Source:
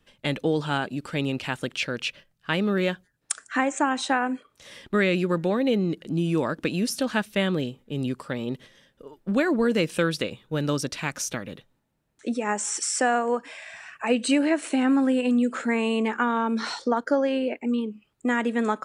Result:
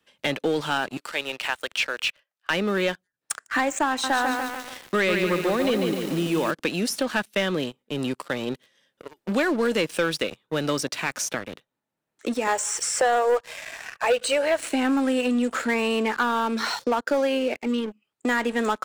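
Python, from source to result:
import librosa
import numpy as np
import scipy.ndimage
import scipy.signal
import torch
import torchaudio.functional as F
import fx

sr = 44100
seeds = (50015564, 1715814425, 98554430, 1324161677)

y = fx.highpass(x, sr, hz=620.0, slope=12, at=(0.97, 2.5))
y = fx.echo_crushed(y, sr, ms=145, feedback_pct=55, bits=7, wet_db=-5.5, at=(3.89, 6.51))
y = fx.low_shelf_res(y, sr, hz=360.0, db=-10.0, q=3.0, at=(12.47, 14.6))
y = fx.highpass(y, sr, hz=400.0, slope=6)
y = fx.leveller(y, sr, passes=3)
y = fx.band_squash(y, sr, depth_pct=40)
y = y * 10.0 ** (-7.5 / 20.0)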